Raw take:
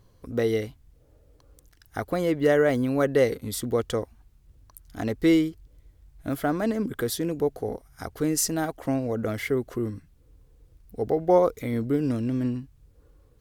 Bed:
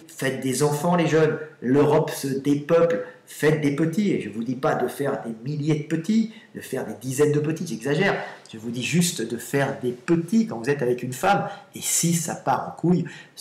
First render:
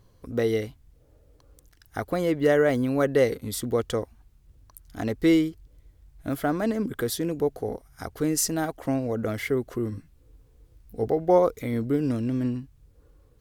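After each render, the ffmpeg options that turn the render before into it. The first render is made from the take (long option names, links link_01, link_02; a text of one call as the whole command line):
ffmpeg -i in.wav -filter_complex "[0:a]asettb=1/sr,asplit=3[link_01][link_02][link_03];[link_01]atrim=end=9.904[link_04];[link_02]atrim=start=9.9:end=11.07,asetpts=PTS-STARTPTS,afade=type=in:duration=0.004:curve=qsin,afade=type=out:start_time=1.166:duration=0.004:curve=qsin,asplit=2[link_05][link_06];[link_06]adelay=18,volume=-5dB[link_07];[link_05][link_07]amix=inputs=2:normalize=0,atrim=end_sample=51597[link_08];[link_03]atrim=start=11.066[link_09];[link_04][link_08]acrossfade=duration=0.004:curve1=hsin:curve2=qsin[link_10];[link_10][link_09]acrossfade=duration=0.004:curve1=qsin:curve2=hsin" out.wav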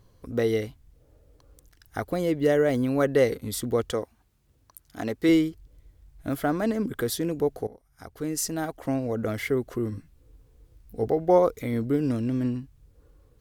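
ffmpeg -i in.wav -filter_complex "[0:a]asettb=1/sr,asplit=3[link_01][link_02][link_03];[link_01]atrim=end=2.094[link_04];[link_02]atrim=start=2.09:end=2.74,asetpts=PTS-STARTPTS,afade=type=in:duration=0.004:curve=qsin,afade=type=out:start_time=0.646:duration=0.004:curve=qsin,equalizer=frequency=1300:width_type=o:width=1.6:gain=-5.5[link_05];[link_03]atrim=start=2.736[link_06];[link_04][link_05]acrossfade=duration=0.004:curve1=hsin:curve2=qsin[link_07];[link_07][link_06]acrossfade=duration=0.004:curve1=qsin:curve2=hsin,asettb=1/sr,asplit=3[link_08][link_09][link_10];[link_08]atrim=end=3.914[link_11];[link_09]atrim=start=3.91:end=5.29,asetpts=PTS-STARTPTS,afade=type=in:duration=0.004:curve=qsin,afade=type=out:start_time=1.376:duration=0.004:curve=qsin,highpass=frequency=200:poles=1[link_12];[link_10]atrim=start=5.286[link_13];[link_11][link_12]acrossfade=duration=0.004:curve1=hsin:curve2=qsin[link_14];[link_14][link_13]acrossfade=duration=0.004:curve1=qsin:curve2=hsin,asplit=2[link_15][link_16];[link_15]atrim=end=7.67,asetpts=PTS-STARTPTS,afade=type=out:start_time=7.666:duration=0.004:curve=hsin:silence=0.133352[link_17];[link_16]atrim=start=7.67,asetpts=PTS-STARTPTS,afade=type=in:duration=1.89:curve=qsin:silence=0.133352[link_18];[link_17][link_18]concat=n=2:v=0:a=1" out.wav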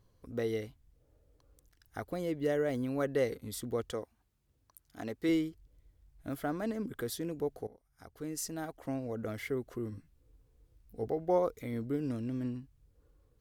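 ffmpeg -i in.wav -af "volume=-9.5dB" out.wav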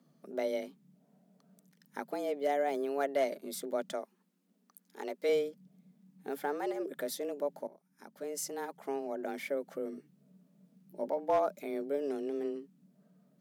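ffmpeg -i in.wav -af "afreqshift=140,asoftclip=type=hard:threshold=-22dB" out.wav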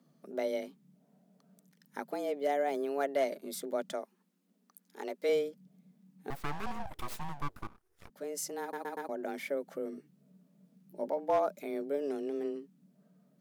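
ffmpeg -i in.wav -filter_complex "[0:a]asettb=1/sr,asplit=3[link_01][link_02][link_03];[link_01]atrim=end=6.304[link_04];[link_02]atrim=start=6.3:end=8.1,asetpts=PTS-STARTPTS,afade=type=in:duration=0.004:curve=qsin,afade=type=out:start_time=1.796:duration=0.004:curve=qsin,aeval=exprs='abs(val(0))':channel_layout=same[link_05];[link_03]atrim=start=8.096[link_06];[link_04][link_05]acrossfade=duration=0.004:curve1=hsin:curve2=qsin[link_07];[link_07][link_06]acrossfade=duration=0.004:curve1=qsin:curve2=hsin,asplit=5[link_08][link_09][link_10][link_11][link_12];[link_08]atrim=end=8.732[link_13];[link_09]atrim=start=8.608:end=8.732[link_14];[link_10]atrim=start=8.608:end=8.732[link_15];[link_11]atrim=start=8.608:end=8.732[link_16];[link_12]atrim=start=9.088[link_17];[link_13][link_14]acrossfade=duration=0.004:curve1=hsin:curve2=hsin[link_18];[link_18][link_15]acrossfade=duration=0.004:curve1=hsin:curve2=hsin[link_19];[link_19][link_16]acrossfade=duration=0.004:curve1=hsin:curve2=hsin[link_20];[link_20][link_17]acrossfade=duration=0.004:curve1=hsin:curve2=hsin" out.wav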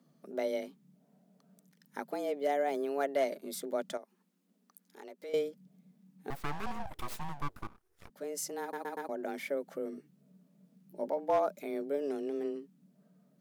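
ffmpeg -i in.wav -filter_complex "[0:a]asettb=1/sr,asplit=3[link_01][link_02][link_03];[link_01]atrim=end=3.974[link_04];[link_02]atrim=start=3.97:end=5.34,asetpts=PTS-STARTPTS,afade=type=in:duration=0.004:curve=qsin,afade=type=out:start_time=1.366:duration=0.004:curve=qsin,acompressor=threshold=-52dB:ratio=2:attack=3.2:release=140:knee=1:detection=peak[link_05];[link_03]atrim=start=5.336[link_06];[link_04][link_05]acrossfade=duration=0.004:curve1=hsin:curve2=qsin[link_07];[link_07][link_06]acrossfade=duration=0.004:curve1=qsin:curve2=hsin" out.wav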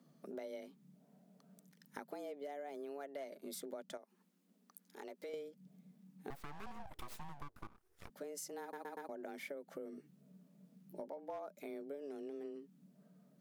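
ffmpeg -i in.wav -af "alimiter=level_in=1.5dB:limit=-24dB:level=0:latency=1:release=241,volume=-1.5dB,acompressor=threshold=-44dB:ratio=6" out.wav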